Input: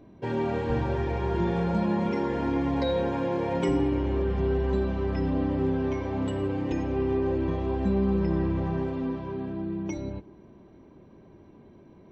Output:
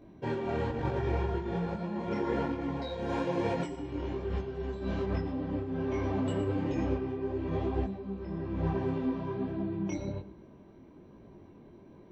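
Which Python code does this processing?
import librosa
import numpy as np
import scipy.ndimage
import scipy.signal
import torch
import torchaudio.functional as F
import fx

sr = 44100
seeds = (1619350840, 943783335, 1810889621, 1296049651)

y = fx.high_shelf(x, sr, hz=4100.0, db=10.0, at=(2.82, 5.04))
y = fx.over_compress(y, sr, threshold_db=-28.0, ratio=-0.5)
y = y + 10.0 ** (-15.0 / 20.0) * np.pad(y, (int(114 * sr / 1000.0), 0))[:len(y)]
y = fx.detune_double(y, sr, cents=40)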